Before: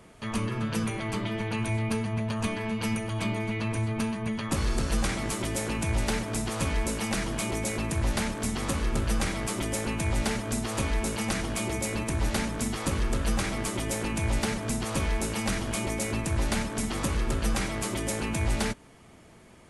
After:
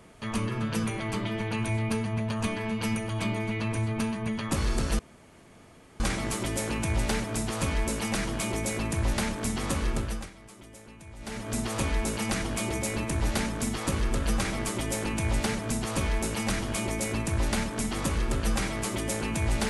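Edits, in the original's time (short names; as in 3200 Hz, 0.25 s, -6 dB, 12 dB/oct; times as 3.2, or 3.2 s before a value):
4.99 insert room tone 1.01 s
8.88–10.59 dip -18.5 dB, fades 0.41 s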